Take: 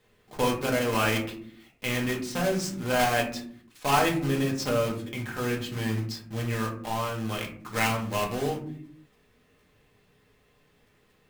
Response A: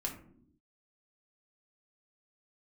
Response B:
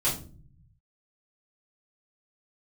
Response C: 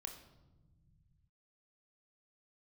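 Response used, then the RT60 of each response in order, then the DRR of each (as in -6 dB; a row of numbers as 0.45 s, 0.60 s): A; no single decay rate, 0.45 s, 1.1 s; -0.5 dB, -9.5 dB, 4.0 dB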